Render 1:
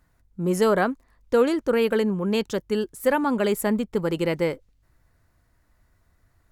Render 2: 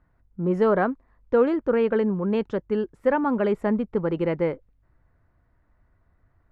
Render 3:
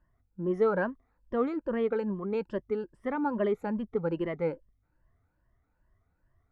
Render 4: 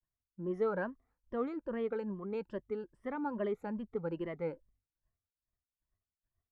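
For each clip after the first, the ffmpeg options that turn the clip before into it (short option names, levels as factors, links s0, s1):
-af "lowpass=1700"
-af "afftfilt=real='re*pow(10,13/40*sin(2*PI*(1.3*log(max(b,1)*sr/1024/100)/log(2)-(2.4)*(pts-256)/sr)))':imag='im*pow(10,13/40*sin(2*PI*(1.3*log(max(b,1)*sr/1024/100)/log(2)-(2.4)*(pts-256)/sr)))':win_size=1024:overlap=0.75,volume=0.355"
-af "agate=range=0.0224:threshold=0.00126:ratio=3:detection=peak,volume=0.447"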